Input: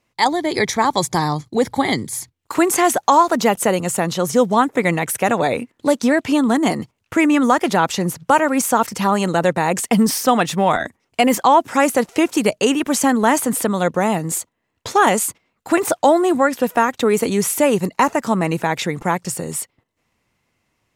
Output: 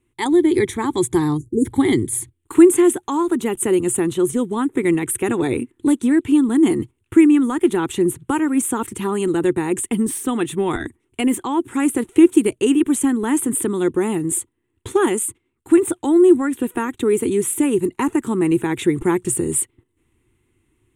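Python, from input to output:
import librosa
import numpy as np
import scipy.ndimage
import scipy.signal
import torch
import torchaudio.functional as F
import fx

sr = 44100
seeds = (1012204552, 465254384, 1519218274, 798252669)

y = fx.spec_erase(x, sr, start_s=1.38, length_s=0.28, low_hz=490.0, high_hz=5700.0)
y = fx.low_shelf(y, sr, hz=150.0, db=9.0)
y = fx.rider(y, sr, range_db=5, speed_s=0.5)
y = fx.curve_eq(y, sr, hz=(120.0, 180.0, 360.0, 600.0, 880.0, 3500.0, 5000.0, 9000.0, 13000.0), db=(0, -9, 10, -19, -8, -4, -22, 6, -6))
y = y * 10.0 ** (-2.0 / 20.0)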